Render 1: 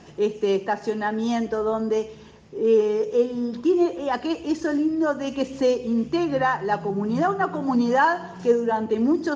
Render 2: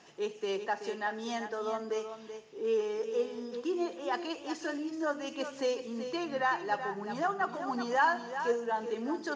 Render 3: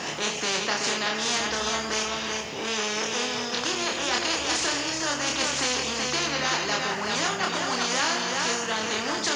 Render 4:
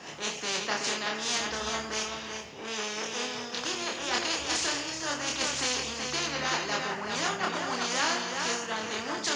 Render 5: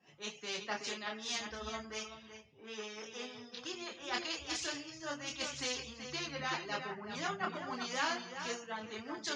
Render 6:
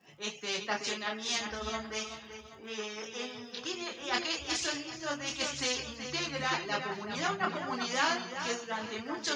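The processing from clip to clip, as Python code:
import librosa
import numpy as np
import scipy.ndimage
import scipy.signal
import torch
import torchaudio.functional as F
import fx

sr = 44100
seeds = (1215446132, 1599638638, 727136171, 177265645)

y1 = fx.highpass(x, sr, hz=850.0, slope=6)
y1 = y1 + 10.0 ** (-9.5 / 20.0) * np.pad(y1, (int(380 * sr / 1000.0), 0))[:len(y1)]
y1 = F.gain(torch.from_numpy(y1), -5.0).numpy()
y2 = fx.doubler(y1, sr, ms=28.0, db=-3)
y2 = fx.spectral_comp(y2, sr, ratio=4.0)
y2 = F.gain(torch.from_numpy(y2), 3.0).numpy()
y3 = fx.band_widen(y2, sr, depth_pct=100)
y3 = F.gain(torch.from_numpy(y3), -4.0).numpy()
y4 = fx.bin_expand(y3, sr, power=2.0)
y4 = fx.air_absorb(y4, sr, metres=67.0)
y4 = F.gain(torch.from_numpy(y4), -2.0).numpy()
y5 = fx.dmg_crackle(y4, sr, seeds[0], per_s=110.0, level_db=-64.0)
y5 = y5 + 10.0 ** (-17.0 / 20.0) * np.pad(y5, (int(778 * sr / 1000.0), 0))[:len(y5)]
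y5 = F.gain(torch.from_numpy(y5), 5.5).numpy()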